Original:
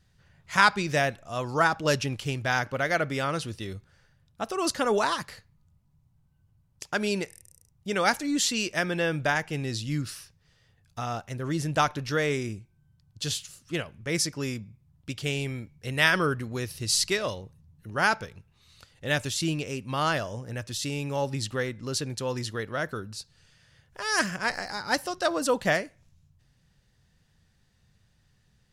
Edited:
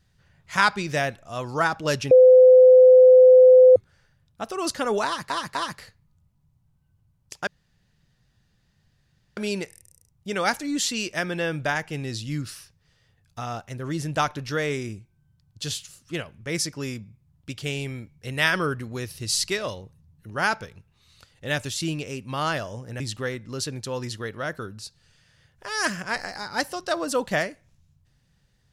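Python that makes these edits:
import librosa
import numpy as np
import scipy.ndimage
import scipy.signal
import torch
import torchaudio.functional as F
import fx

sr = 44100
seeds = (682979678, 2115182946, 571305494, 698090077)

y = fx.edit(x, sr, fx.bleep(start_s=2.11, length_s=1.65, hz=510.0, db=-8.0),
    fx.repeat(start_s=5.05, length_s=0.25, count=3),
    fx.insert_room_tone(at_s=6.97, length_s=1.9),
    fx.cut(start_s=20.6, length_s=0.74), tone=tone)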